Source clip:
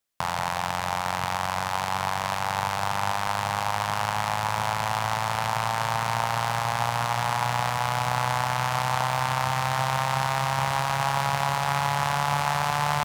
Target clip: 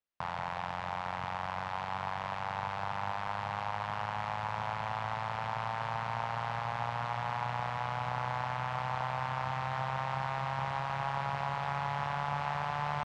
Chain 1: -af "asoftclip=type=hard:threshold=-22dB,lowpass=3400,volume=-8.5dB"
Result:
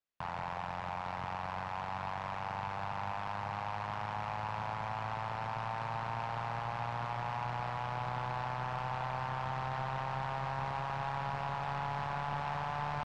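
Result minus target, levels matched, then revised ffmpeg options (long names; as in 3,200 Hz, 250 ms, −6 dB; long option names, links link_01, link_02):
hard clipping: distortion +9 dB
-af "asoftclip=type=hard:threshold=-15dB,lowpass=3400,volume=-8.5dB"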